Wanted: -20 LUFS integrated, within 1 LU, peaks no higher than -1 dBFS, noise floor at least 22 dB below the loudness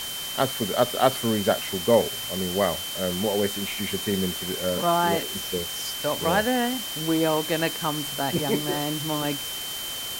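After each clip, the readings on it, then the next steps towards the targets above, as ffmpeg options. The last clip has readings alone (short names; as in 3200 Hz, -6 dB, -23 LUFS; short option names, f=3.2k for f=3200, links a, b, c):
steady tone 3100 Hz; tone level -33 dBFS; noise floor -33 dBFS; noise floor target -47 dBFS; loudness -25.0 LUFS; peak -5.5 dBFS; loudness target -20.0 LUFS
-> -af "bandreject=f=3.1k:w=30"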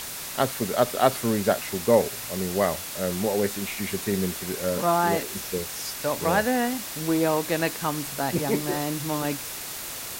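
steady tone none; noise floor -36 dBFS; noise floor target -48 dBFS
-> -af "afftdn=nr=12:nf=-36"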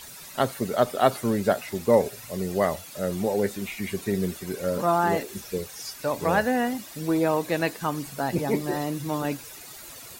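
noise floor -43 dBFS; noise floor target -49 dBFS
-> -af "afftdn=nr=6:nf=-43"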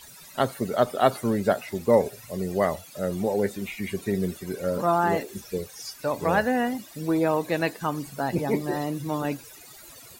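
noise floor -47 dBFS; noise floor target -49 dBFS
-> -af "afftdn=nr=6:nf=-47"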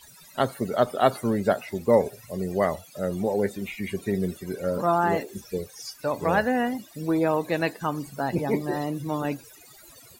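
noise floor -51 dBFS; loudness -26.5 LUFS; peak -5.5 dBFS; loudness target -20.0 LUFS
-> -af "volume=6.5dB,alimiter=limit=-1dB:level=0:latency=1"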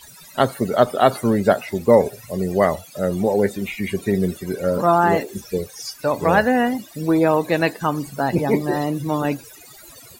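loudness -20.0 LUFS; peak -1.0 dBFS; noise floor -44 dBFS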